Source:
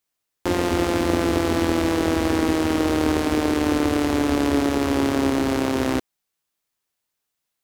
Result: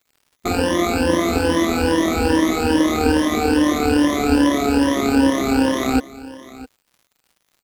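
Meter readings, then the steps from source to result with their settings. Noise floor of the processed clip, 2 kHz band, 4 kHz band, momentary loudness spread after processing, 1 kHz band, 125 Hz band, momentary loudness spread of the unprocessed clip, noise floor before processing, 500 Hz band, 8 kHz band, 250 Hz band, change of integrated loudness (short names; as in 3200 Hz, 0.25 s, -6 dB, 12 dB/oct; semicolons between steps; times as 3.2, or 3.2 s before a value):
-69 dBFS, +4.5 dB, +4.0 dB, 6 LU, +4.5 dB, +1.0 dB, 2 LU, -80 dBFS, +3.0 dB, +4.5 dB, +4.0 dB, +3.5 dB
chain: moving spectral ripple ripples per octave 1.2, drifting +2.4 Hz, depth 21 dB; comb 4 ms, depth 45%; crackle 120/s -43 dBFS; on a send: echo 0.658 s -18 dB; on the sum: gain -1.5 dB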